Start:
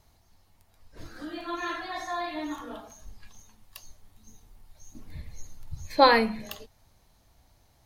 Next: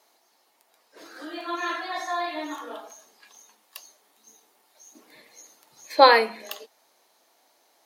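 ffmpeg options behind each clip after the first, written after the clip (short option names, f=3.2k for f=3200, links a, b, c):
-af "highpass=f=340:w=0.5412,highpass=f=340:w=1.3066,volume=4dB"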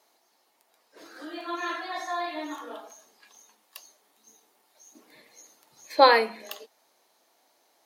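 -af "lowshelf=f=390:g=2.5,volume=-3dB"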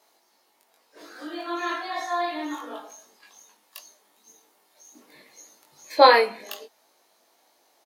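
-filter_complex "[0:a]asplit=2[a][b];[b]adelay=20,volume=-3dB[c];[a][c]amix=inputs=2:normalize=0,volume=1dB"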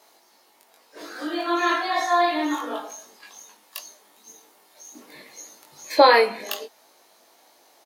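-af "alimiter=limit=-10.5dB:level=0:latency=1:release=373,volume=7dB"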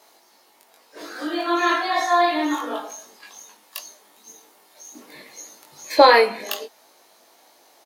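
-af "aeval=exprs='0.708*(cos(1*acos(clip(val(0)/0.708,-1,1)))-cos(1*PI/2))+0.0112*(cos(6*acos(clip(val(0)/0.708,-1,1)))-cos(6*PI/2))+0.00708*(cos(8*acos(clip(val(0)/0.708,-1,1)))-cos(8*PI/2))':c=same,volume=2dB"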